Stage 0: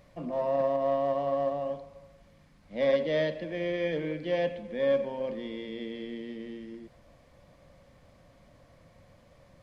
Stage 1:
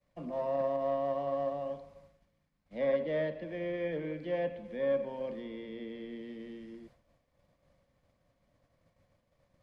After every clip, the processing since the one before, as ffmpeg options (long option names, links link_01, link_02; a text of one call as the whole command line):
ffmpeg -i in.wav -filter_complex "[0:a]agate=range=-33dB:threshold=-49dB:ratio=3:detection=peak,acrossover=split=270|750|2500[link_01][link_02][link_03][link_04];[link_04]acompressor=threshold=-58dB:ratio=6[link_05];[link_01][link_02][link_03][link_05]amix=inputs=4:normalize=0,volume=-4.5dB" out.wav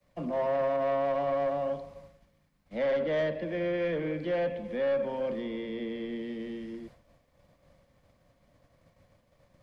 ffmpeg -i in.wav -filter_complex "[0:a]acrossover=split=120|510|1800[link_01][link_02][link_03][link_04];[link_02]alimiter=level_in=11dB:limit=-24dB:level=0:latency=1,volume=-11dB[link_05];[link_01][link_05][link_03][link_04]amix=inputs=4:normalize=0,asoftclip=type=tanh:threshold=-30.5dB,volume=7.5dB" out.wav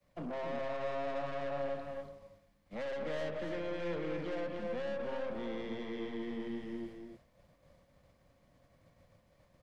ffmpeg -i in.wav -af "acompressor=threshold=-30dB:ratio=6,aeval=exprs='(tanh(56.2*val(0)+0.45)-tanh(0.45))/56.2':channel_layout=same,aecho=1:1:259|288:0.335|0.447,volume=-1.5dB" out.wav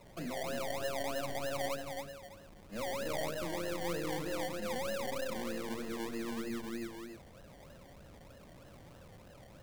ffmpeg -i in.wav -af "aeval=exprs='val(0)+0.5*0.00316*sgn(val(0))':channel_layout=same,asuperstop=centerf=960:order=8:qfactor=1.6,acrusher=samples=27:mix=1:aa=0.000001:lfo=1:lforange=16.2:lforate=3.2" out.wav